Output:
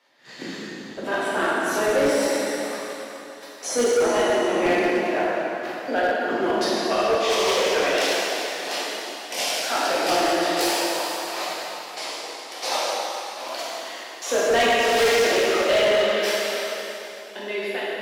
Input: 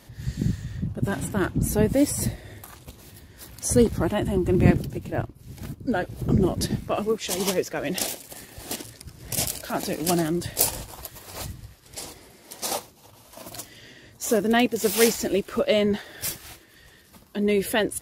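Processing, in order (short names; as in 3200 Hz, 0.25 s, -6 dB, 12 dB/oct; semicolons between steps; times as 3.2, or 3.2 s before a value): ending faded out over 1.16 s; HPF 240 Hz 24 dB/oct; three-band isolator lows -16 dB, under 470 Hz, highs -20 dB, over 5200 Hz; in parallel at +1 dB: compressor 6:1, threshold -40 dBFS, peak gain reduction 20 dB; on the sum: gate -42 dBFS, range -16 dB; plate-style reverb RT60 3.3 s, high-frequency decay 0.9×, DRR -8.5 dB; hard clip -15.5 dBFS, distortion -12 dB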